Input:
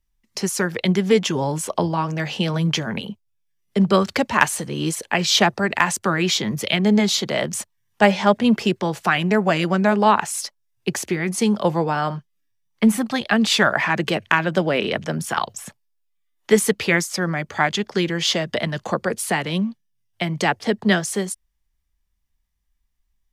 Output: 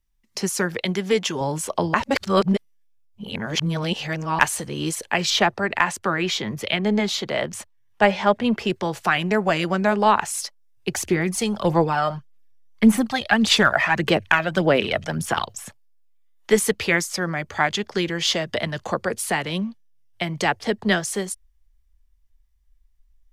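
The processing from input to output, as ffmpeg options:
-filter_complex "[0:a]asettb=1/sr,asplit=3[a][b][c];[a]atrim=end=0.804[d];[b]atrim=start=0.8:end=1.41,asetpts=PTS-STARTPTS,afade=t=in:d=0.004:c=qsin,afade=t=out:st=0.606:d=0.004:c=qsin,lowshelf=f=340:g=-6.5[e];[c]atrim=start=1.406[f];[d][e]acrossfade=d=0.004:c1=hsin:c2=qsin[g];[g][f]acrossfade=d=0.004:c1=qsin:c2=hsin,asettb=1/sr,asplit=3[h][i][j];[h]atrim=end=5.304[k];[i]atrim=start=5.3:end=8.7,asetpts=PTS-STARTPTS,afade=t=in:d=0.004:c=qsin,afade=t=out:st=3.396:d=0.004:c=qsin,bass=f=250:g=-2,treble=f=4k:g=-7[l];[j]atrim=start=8.696[m];[k][l]acrossfade=d=0.004:c1=hsin:c2=qsin[n];[n][m]acrossfade=d=0.004:c1=qsin:c2=hsin,asplit=3[o][p][q];[o]afade=t=out:st=10.93:d=0.02[r];[p]aphaser=in_gain=1:out_gain=1:delay=1.6:decay=0.49:speed=1.7:type=sinusoidal,afade=t=in:st=10.93:d=0.02,afade=t=out:st=15.45:d=0.02[s];[q]afade=t=in:st=15.45:d=0.02[t];[r][s][t]amix=inputs=3:normalize=0,asplit=3[u][v][w];[u]atrim=end=1.942[x];[v]atrim=start=1.938:end=4.392,asetpts=PTS-STARTPTS,areverse[y];[w]atrim=start=4.388[z];[x][y]acrossfade=d=0.004:c1=hsin:c2=hsin[aa];[aa][z]acrossfade=d=0.004:c1=hsin:c2=hsin,asubboost=boost=5:cutoff=68,volume=-1dB"

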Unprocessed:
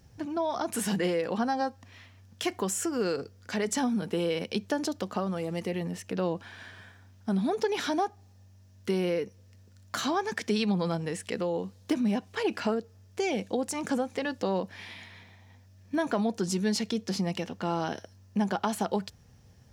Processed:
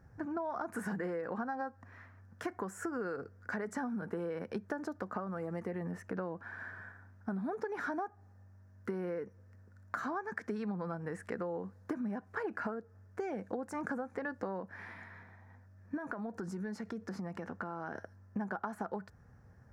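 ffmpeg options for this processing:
-filter_complex "[0:a]asettb=1/sr,asplit=3[a][b][c];[a]atrim=end=15.974[d];[b]atrim=start=15.97:end=17.95,asetpts=PTS-STARTPTS,afade=t=in:d=0.004:c=qsin,afade=t=out:st=1.976:d=0.004:c=qsin,acompressor=threshold=-33dB:ratio=6:attack=3.2:release=140:knee=1:detection=peak[e];[c]atrim=start=17.946[f];[d][e]acrossfade=d=0.004:c1=hsin:c2=qsin[g];[g][f]acrossfade=d=0.004:c1=qsin:c2=hsin,highshelf=f=2.2k:t=q:w=3:g=-12.5,acompressor=threshold=-32dB:ratio=6,volume=-2.5dB"

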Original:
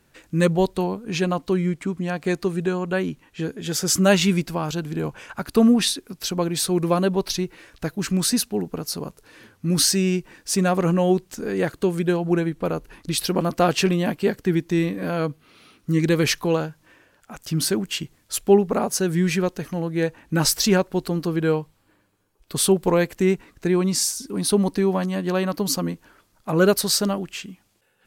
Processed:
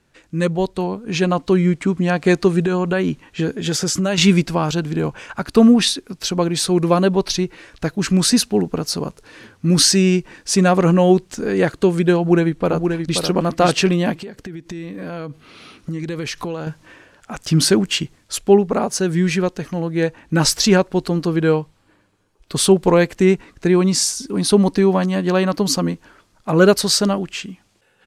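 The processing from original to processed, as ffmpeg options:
-filter_complex "[0:a]asettb=1/sr,asplit=3[a][b][c];[a]atrim=end=2.624[d];[b]atrim=start=2.62:end=4.18,asetpts=PTS-STARTPTS,afade=t=in:d=0.004:c=qsin,afade=t=out:st=1.556:d=0.004:c=qsin,acompressor=threshold=-23dB:ratio=6:attack=3.2:release=140:knee=1:detection=peak[e];[c]atrim=start=4.176[f];[d][e]acrossfade=d=0.004:c1=hsin:c2=qsin[g];[g][f]acrossfade=d=0.004:c1=qsin:c2=hsin,asplit=2[h][i];[i]afade=t=in:st=12.18:d=0.01,afade=t=out:st=13.18:d=0.01,aecho=0:1:530|1060:0.595662|0.0595662[j];[h][j]amix=inputs=2:normalize=0,asettb=1/sr,asplit=3[k][l][m];[k]atrim=end=14.154[n];[l]atrim=start=14.15:end=16.67,asetpts=PTS-STARTPTS,afade=t=in:d=0.004:c=qsin,afade=t=out:st=2.516:d=0.004:c=qsin,acompressor=threshold=-33dB:ratio=10:attack=3.2:release=140:knee=1:detection=peak[o];[m]atrim=start=16.666[p];[n][o]acrossfade=d=0.004:c1=hsin:c2=qsin[q];[q][p]acrossfade=d=0.004:c1=qsin:c2=hsin,lowpass=8.4k,dynaudnorm=f=660:g=3:m=11.5dB,volume=-1dB"

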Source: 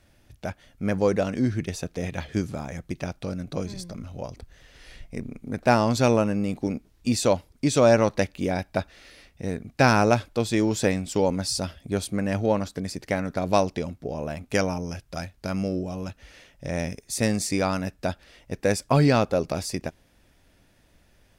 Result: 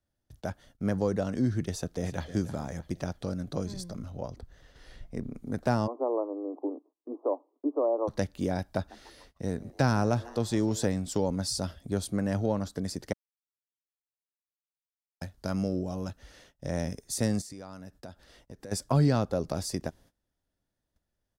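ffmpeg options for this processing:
-filter_complex "[0:a]asplit=2[a][b];[b]afade=t=in:st=1.73:d=0.01,afade=t=out:st=2.31:d=0.01,aecho=0:1:310|620|930|1240:0.223872|0.100742|0.0453341|0.0204003[c];[a][c]amix=inputs=2:normalize=0,asettb=1/sr,asplit=3[d][e][f];[d]atrim=end=4.104[g];[e]atrim=start=4.1:end=5.35,asetpts=PTS-STARTPTS,afade=t=in:d=0.004:c=qsin,afade=t=out:st=1.246:d=0.004:c=qsin,equalizer=f=10k:t=o:w=2:g=-7[h];[f]atrim=start=5.346[i];[g][h]acrossfade=d=0.004:c1=hsin:c2=qsin[j];[j][i]acrossfade=d=0.004:c1=qsin:c2=hsin,asplit=3[k][l][m];[k]afade=t=out:st=5.86:d=0.02[n];[l]asuperpass=centerf=570:order=20:qfactor=0.65,afade=t=in:st=5.86:d=0.02,afade=t=out:st=8.07:d=0.02[o];[m]afade=t=in:st=8.07:d=0.02[p];[n][o][p]amix=inputs=3:normalize=0,asettb=1/sr,asplit=3[q][r][s];[q]atrim=end=8.614[t];[r]atrim=start=8.61:end=10.85,asetpts=PTS-STARTPTS,afade=t=in:d=0.004:c=qsin,afade=t=out:st=2.236:d=0.004:c=qsin,asplit=5[u][v][w][x][y];[v]adelay=148,afreqshift=120,volume=-23dB[z];[w]adelay=296,afreqshift=240,volume=-27.9dB[aa];[x]adelay=444,afreqshift=360,volume=-32.8dB[ab];[y]adelay=592,afreqshift=480,volume=-37.6dB[ac];[u][z][aa][ab][ac]amix=inputs=5:normalize=0,atrim=end_sample=98784[ad];[s]atrim=start=10.846[ae];[t][ad]acrossfade=d=0.004:c1=hsin:c2=qsin[af];[af][ae]acrossfade=d=0.004:c1=qsin:c2=hsin,asplit=3[ag][ah][ai];[ag]afade=t=out:st=17.4:d=0.02[aj];[ah]acompressor=threshold=-40dB:ratio=5:attack=3.2:release=140:knee=1:detection=peak,afade=t=in:st=17.4:d=0.02,afade=t=out:st=18.71:d=0.02[ak];[ai]afade=t=in:st=18.71:d=0.02[al];[aj][ak][al]amix=inputs=3:normalize=0,asplit=3[am][an][ao];[am]atrim=end=13.13,asetpts=PTS-STARTPTS,afade=t=out:st=13.126:d=0.004:c=hsin[ap];[an]atrim=start=13.13:end=15.21,asetpts=PTS-STARTPTS,volume=0[aq];[ao]atrim=start=15.21,asetpts=PTS-STARTPTS,afade=t=in:d=0.004:c=hsin[ar];[ap][aq][ar]concat=n=3:v=0:a=1,agate=range=-21dB:threshold=-53dB:ratio=16:detection=peak,equalizer=f=2.4k:w=2.5:g=-10,acrossover=split=220[as][at];[at]acompressor=threshold=-28dB:ratio=2[au];[as][au]amix=inputs=2:normalize=0,volume=-2dB"

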